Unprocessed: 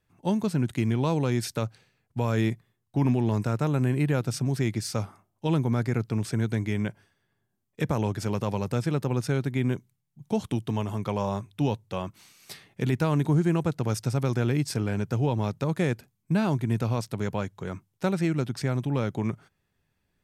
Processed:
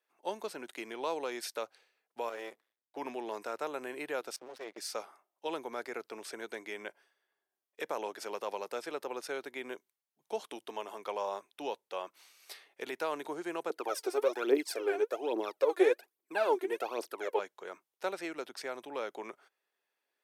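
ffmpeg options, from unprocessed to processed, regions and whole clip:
ffmpeg -i in.wav -filter_complex "[0:a]asettb=1/sr,asplit=3[link_01][link_02][link_03];[link_01]atrim=end=2.294[link_04];[link_02]atrim=start=2.29:end=2.97,asetpts=PTS-STARTPTS,afade=type=in:duration=0.004:curve=qsin,afade=type=out:start_time=0.676:duration=0.004:curve=qsin,bandreject=frequency=410:width=11,aeval=exprs='max(val(0),0)':channel_layout=same[link_05];[link_03]atrim=start=2.966[link_06];[link_04][link_05]acrossfade=duration=0.004:curve1=hsin:curve2=qsin[link_07];[link_07][link_06]acrossfade=duration=0.004:curve1=qsin:curve2=hsin,asettb=1/sr,asplit=3[link_08][link_09][link_10];[link_08]atrim=end=4.364[link_11];[link_09]atrim=start=4.36:end=4.78,asetpts=PTS-STARTPTS,afade=type=in:duration=0.004:curve=qsin,afade=type=out:start_time=0.416:duration=0.004:curve=qsin,agate=range=-17dB:threshold=-34dB:ratio=16:release=100:detection=peak,lowpass=5500,aeval=exprs='max(val(0),0)':channel_layout=same[link_12];[link_10]atrim=start=4.776[link_13];[link_11][link_12]acrossfade=duration=0.004:curve1=hsin:curve2=qsin[link_14];[link_14][link_13]acrossfade=duration=0.004:curve1=qsin:curve2=hsin,asettb=1/sr,asplit=3[link_15][link_16][link_17];[link_15]atrim=end=13.704[link_18];[link_16]atrim=start=13.7:end=17.39,asetpts=PTS-STARTPTS,afade=type=in:duration=0.004:curve=qsin,afade=type=out:start_time=3.686:duration=0.004:curve=qsin,equalizer=frequency=5800:width=0.86:gain=-4,aphaser=in_gain=1:out_gain=1:delay=2.9:decay=0.75:speed=1.2:type=triangular,highpass=frequency=330:width_type=q:width=2.6[link_19];[link_17]atrim=start=17.386[link_20];[link_18][link_19]acrossfade=duration=0.004:curve1=hsin:curve2=qsin[link_21];[link_21][link_20]acrossfade=duration=0.004:curve1=qsin:curve2=hsin,highpass=frequency=420:width=0.5412,highpass=frequency=420:width=1.3066,equalizer=frequency=7300:width=2:gain=-3.5,volume=-4.5dB" out.wav

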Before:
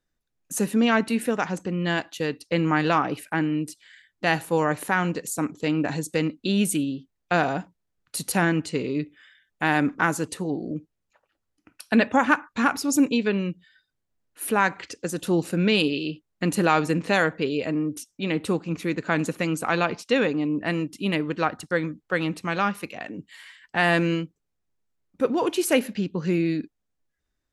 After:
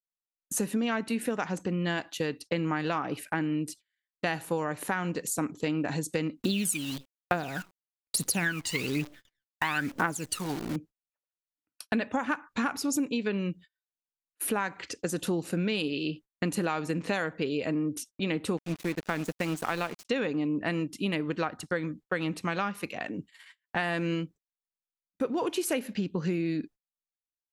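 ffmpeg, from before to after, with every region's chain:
ffmpeg -i in.wav -filter_complex "[0:a]asettb=1/sr,asplit=3[link_01][link_02][link_03];[link_01]atrim=end=6.424[link_04];[link_02]atrim=start=6.42:end=10.76,asetpts=PTS-STARTPTS,afade=type=in:duration=0.004:curve=qsin,afade=type=out:start_time=4.336:duration=0.004:curve=qsin,tiltshelf=frequency=680:gain=-4.5,aphaser=in_gain=1:out_gain=1:delay=1.1:decay=0.78:speed=1.1:type=triangular,acrusher=bits=7:dc=4:mix=0:aa=0.000001[link_05];[link_03]atrim=start=10.756[link_06];[link_04][link_05]acrossfade=duration=0.004:curve1=hsin:curve2=qsin[link_07];[link_07][link_06]acrossfade=duration=0.004:curve1=qsin:curve2=hsin,asettb=1/sr,asplit=3[link_08][link_09][link_10];[link_08]atrim=end=18.574[link_11];[link_09]atrim=start=18.57:end=20.05,asetpts=PTS-STARTPTS,afade=type=in:duration=0.004:curve=qsin,afade=type=out:start_time=1.476:duration=0.004:curve=qsin,acrusher=bits=5:mix=0:aa=0.5,aeval=exprs='sgn(val(0))*max(abs(val(0))-0.0168,0)':channel_layout=same[link_12];[link_10]atrim=start=20.046[link_13];[link_11][link_12]acrossfade=duration=0.004:curve1=hsin:curve2=qsin[link_14];[link_14][link_13]acrossfade=duration=0.004:curve1=qsin:curve2=hsin,agate=range=-34dB:threshold=-44dB:ratio=16:detection=peak,acompressor=threshold=-26dB:ratio=6" out.wav

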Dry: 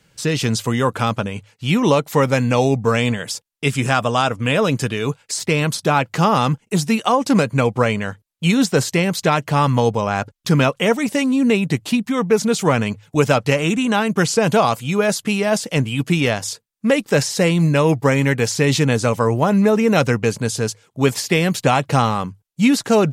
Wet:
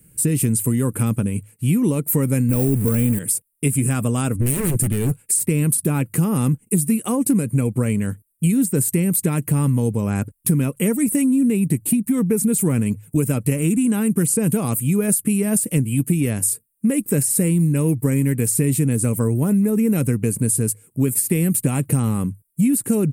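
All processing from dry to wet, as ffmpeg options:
ffmpeg -i in.wav -filter_complex "[0:a]asettb=1/sr,asplit=3[link_01][link_02][link_03];[link_01]atrim=end=2.494[link_04];[link_02]atrim=start=2.49:end=3.19,asetpts=PTS-STARTPTS,afade=type=in:duration=0.004:curve=qsin,afade=type=out:start_time=0.696:duration=0.004:curve=qsin,aeval=exprs='val(0)+0.5*0.112*sgn(val(0))':channel_layout=same,deesser=0.45[link_05];[link_03]atrim=start=3.186[link_06];[link_04][link_05]acrossfade=duration=0.004:curve1=hsin:curve2=qsin[link_07];[link_07][link_06]acrossfade=duration=0.004:curve1=qsin:curve2=hsin,asettb=1/sr,asplit=3[link_08][link_09][link_10];[link_08]atrim=end=4.354[link_11];[link_09]atrim=start=4.35:end=5.2,asetpts=PTS-STARTPTS,afade=type=in:duration=0.004:curve=qsin,afade=type=out:start_time=0.846:duration=0.004:curve=qsin,lowshelf=frequency=180:gain=7,aeval=exprs='0.158*(abs(mod(val(0)/0.158+3,4)-2)-1)':channel_layout=same[link_12];[link_10]atrim=start=5.196[link_13];[link_11][link_12]acrossfade=duration=0.004:curve1=hsin:curve2=qsin[link_14];[link_14][link_13]acrossfade=duration=0.004:curve1=qsin:curve2=hsin,firequalizer=gain_entry='entry(290,0);entry(680,-19);entry(2400,-12);entry(3400,-21);entry(6100,-15);entry(8900,12)':delay=0.05:min_phase=1,acompressor=threshold=-21dB:ratio=6,volume=6dB" out.wav

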